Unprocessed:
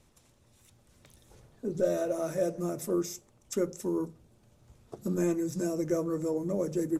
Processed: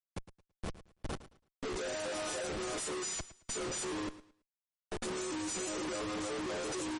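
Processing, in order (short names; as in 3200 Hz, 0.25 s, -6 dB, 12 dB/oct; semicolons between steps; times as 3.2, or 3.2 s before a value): frequency quantiser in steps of 3 st; dynamic EQ 990 Hz, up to +4 dB, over -52 dBFS, Q 2.6; HPF 300 Hz 24 dB/oct; notch 2200 Hz, Q 8; doubler 28 ms -10.5 dB; Schmitt trigger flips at -43 dBFS; feedback echo 0.11 s, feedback 25%, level -15.5 dB; gain -3 dB; MP3 40 kbps 48000 Hz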